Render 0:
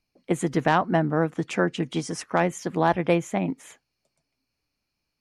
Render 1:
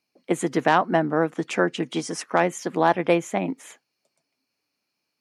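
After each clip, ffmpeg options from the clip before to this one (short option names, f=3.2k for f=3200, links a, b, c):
-af "highpass=230,volume=2.5dB"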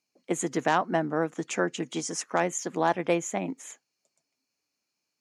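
-af "equalizer=f=6.8k:t=o:w=0.44:g=11.5,volume=-5.5dB"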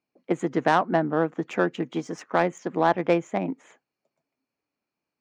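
-af "adynamicsmooth=sensitivity=1:basefreq=2.1k,volume=4dB"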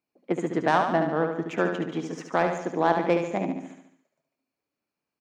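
-af "aecho=1:1:72|144|216|288|360|432|504:0.501|0.266|0.141|0.0746|0.0395|0.021|0.0111,volume=-2dB"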